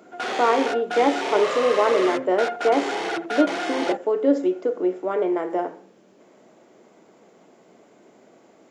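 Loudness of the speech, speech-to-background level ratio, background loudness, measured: −23.0 LKFS, 4.5 dB, −27.5 LKFS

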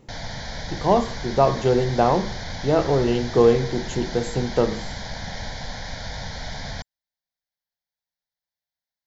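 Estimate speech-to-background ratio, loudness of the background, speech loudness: 12.0 dB, −33.5 LKFS, −21.5 LKFS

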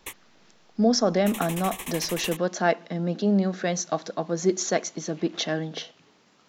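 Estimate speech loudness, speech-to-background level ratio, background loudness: −26.0 LKFS, 10.5 dB, −36.5 LKFS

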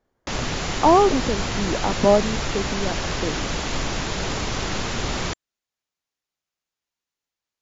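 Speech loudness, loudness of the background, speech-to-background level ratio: −22.0 LKFS, −26.5 LKFS, 4.5 dB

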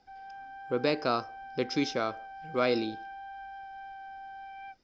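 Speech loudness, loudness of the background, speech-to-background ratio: −31.5 LKFS, −44.5 LKFS, 13.0 dB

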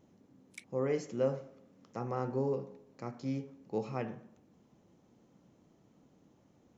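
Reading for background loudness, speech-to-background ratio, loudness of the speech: −53.5 LKFS, 16.5 dB, −37.0 LKFS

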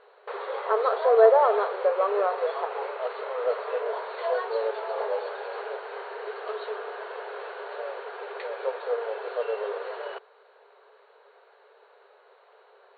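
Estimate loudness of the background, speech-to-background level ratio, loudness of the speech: −32.5 LKFS, 9.5 dB, −23.0 LKFS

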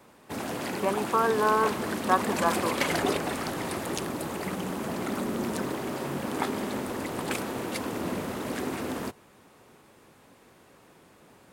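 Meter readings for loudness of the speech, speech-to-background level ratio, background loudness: −27.5 LKFS, 4.0 dB, −31.5 LKFS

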